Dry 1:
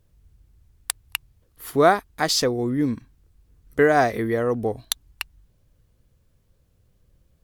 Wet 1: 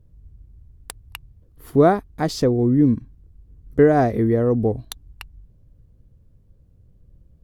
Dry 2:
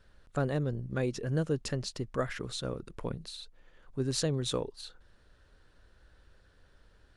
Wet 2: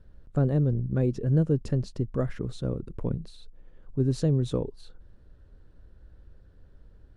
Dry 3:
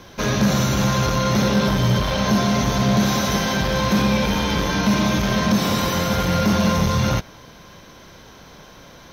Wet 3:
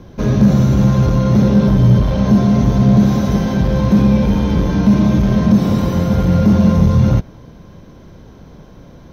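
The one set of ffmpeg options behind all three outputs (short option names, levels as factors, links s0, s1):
-af "tiltshelf=f=660:g=10"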